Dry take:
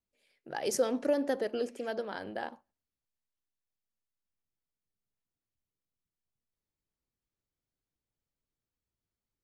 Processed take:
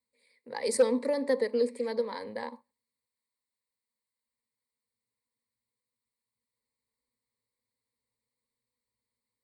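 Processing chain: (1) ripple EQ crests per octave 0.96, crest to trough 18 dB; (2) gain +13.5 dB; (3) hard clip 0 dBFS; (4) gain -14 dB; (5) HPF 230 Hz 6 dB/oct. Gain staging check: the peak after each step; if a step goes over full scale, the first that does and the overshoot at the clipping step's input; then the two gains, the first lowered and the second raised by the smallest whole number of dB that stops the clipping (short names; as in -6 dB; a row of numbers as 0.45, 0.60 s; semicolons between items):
-10.0, +3.5, 0.0, -14.0, -12.5 dBFS; step 2, 3.5 dB; step 2 +9.5 dB, step 4 -10 dB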